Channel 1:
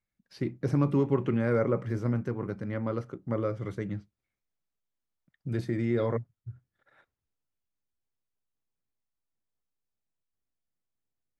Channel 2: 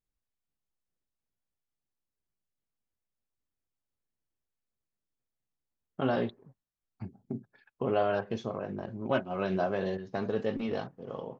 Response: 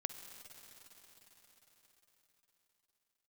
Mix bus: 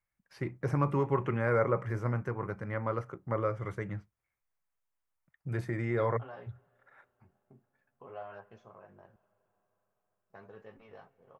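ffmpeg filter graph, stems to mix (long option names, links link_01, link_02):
-filter_complex "[0:a]volume=-0.5dB[link_01];[1:a]flanger=delay=9.6:depth=5:regen=-31:speed=0.48:shape=triangular,adelay=200,volume=-16.5dB,asplit=3[link_02][link_03][link_04];[link_02]atrim=end=9.16,asetpts=PTS-STARTPTS,afade=type=out:start_time=9.156:duration=0.004:curve=hsin[link_05];[link_03]atrim=start=9.16:end=10.3,asetpts=PTS-STARTPTS,volume=0[link_06];[link_04]atrim=start=10.3,asetpts=PTS-STARTPTS,afade=type=in:duration=0.004:curve=hsin[link_07];[link_05][link_06][link_07]concat=n=3:v=0:a=1,asplit=2[link_08][link_09];[link_09]volume=-10dB[link_10];[2:a]atrim=start_sample=2205[link_11];[link_10][link_11]afir=irnorm=-1:irlink=0[link_12];[link_01][link_08][link_12]amix=inputs=3:normalize=0,equalizer=frequency=250:width_type=o:width=1:gain=-9,equalizer=frequency=1000:width_type=o:width=1:gain=6,equalizer=frequency=2000:width_type=o:width=1:gain=4,equalizer=frequency=4000:width_type=o:width=1:gain=-9"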